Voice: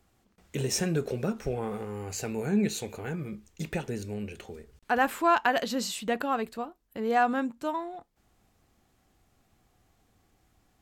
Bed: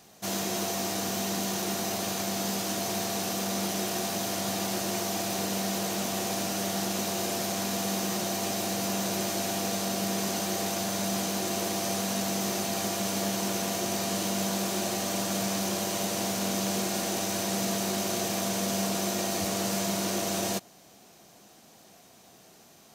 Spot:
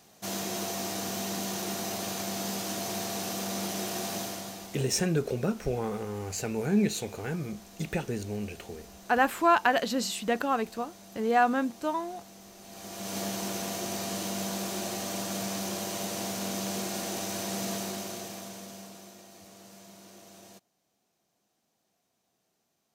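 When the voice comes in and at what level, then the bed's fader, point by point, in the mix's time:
4.20 s, +1.0 dB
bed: 0:04.19 −3 dB
0:05.00 −21 dB
0:12.56 −21 dB
0:13.17 −4 dB
0:17.75 −4 dB
0:19.25 −22 dB

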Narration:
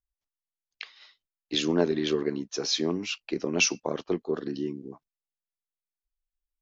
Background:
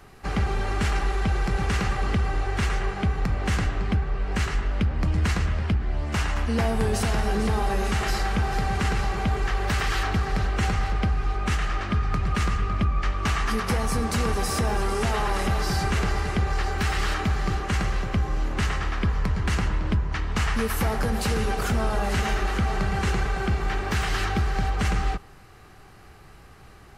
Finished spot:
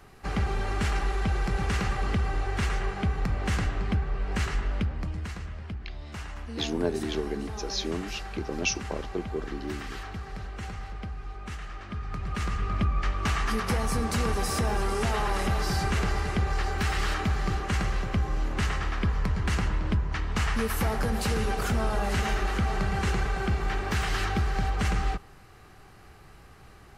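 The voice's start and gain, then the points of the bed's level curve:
5.05 s, −4.5 dB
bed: 0:04.74 −3 dB
0:05.30 −13 dB
0:11.79 −13 dB
0:12.77 −2.5 dB

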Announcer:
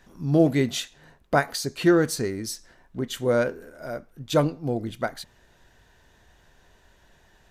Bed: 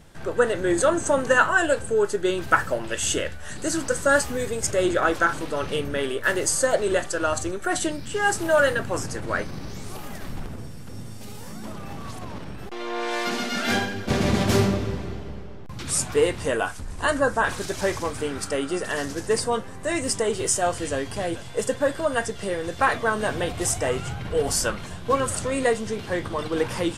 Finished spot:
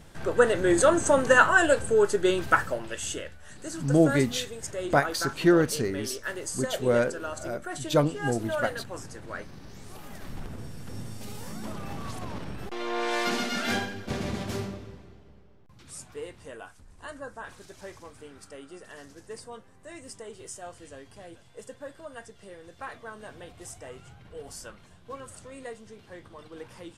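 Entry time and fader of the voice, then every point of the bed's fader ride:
3.60 s, −1.5 dB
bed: 0:02.32 0 dB
0:03.31 −11.5 dB
0:09.59 −11.5 dB
0:10.89 −1 dB
0:13.34 −1 dB
0:15.11 −18.5 dB

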